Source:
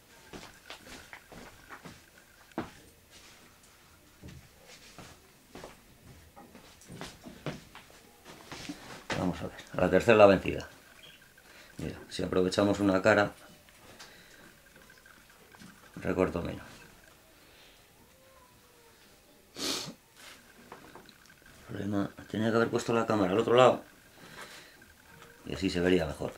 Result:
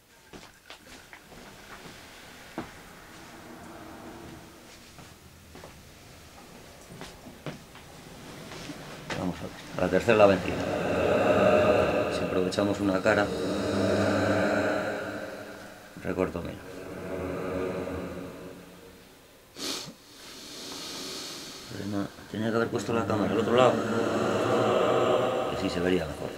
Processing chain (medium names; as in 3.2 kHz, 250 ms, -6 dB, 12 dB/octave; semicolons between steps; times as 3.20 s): swelling reverb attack 1530 ms, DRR -1.5 dB